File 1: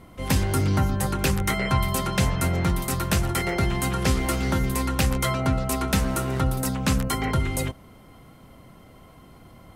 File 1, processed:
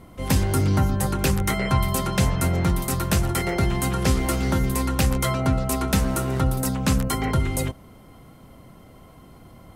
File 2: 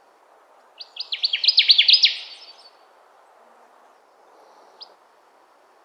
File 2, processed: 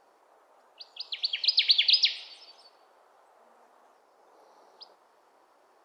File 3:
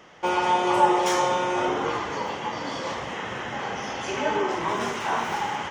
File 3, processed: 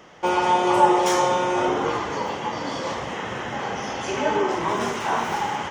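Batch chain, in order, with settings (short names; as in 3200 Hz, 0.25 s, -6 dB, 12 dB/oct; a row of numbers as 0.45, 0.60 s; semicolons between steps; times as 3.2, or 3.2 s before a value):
bell 2300 Hz -3 dB 2.3 oct; match loudness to -23 LUFS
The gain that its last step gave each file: +2.0, -6.0, +3.5 dB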